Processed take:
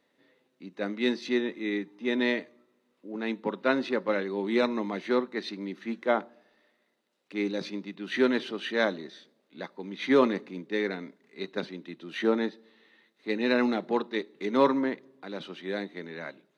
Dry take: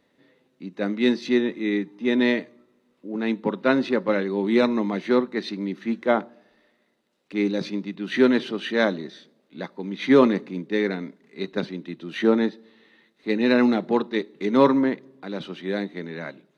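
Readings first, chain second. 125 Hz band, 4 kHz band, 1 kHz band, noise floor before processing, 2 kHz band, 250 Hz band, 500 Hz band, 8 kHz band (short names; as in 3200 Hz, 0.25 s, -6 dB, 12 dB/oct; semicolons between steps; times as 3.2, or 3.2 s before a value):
-9.5 dB, -3.5 dB, -4.0 dB, -68 dBFS, -3.5 dB, -7.5 dB, -5.5 dB, n/a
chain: low shelf 190 Hz -11.5 dB; gain -3.5 dB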